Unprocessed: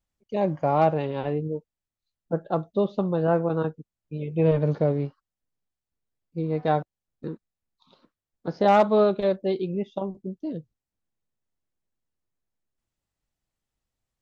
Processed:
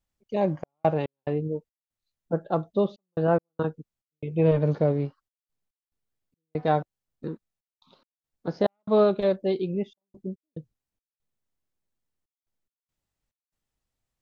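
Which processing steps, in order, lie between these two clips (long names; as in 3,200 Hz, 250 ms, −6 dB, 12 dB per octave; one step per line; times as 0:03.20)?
gate pattern "xxx.x.xx.xx" 71 BPM −60 dB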